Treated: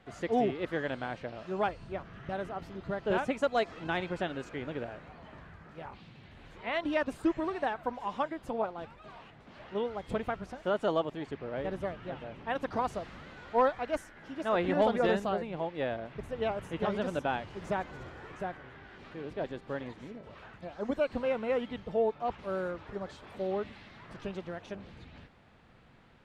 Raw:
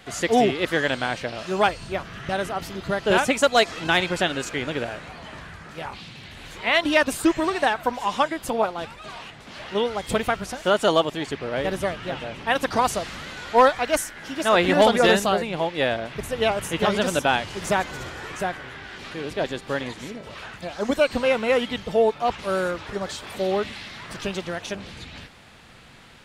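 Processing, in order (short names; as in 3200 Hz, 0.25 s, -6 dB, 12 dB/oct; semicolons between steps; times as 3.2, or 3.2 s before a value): LPF 1100 Hz 6 dB/oct; gain -8.5 dB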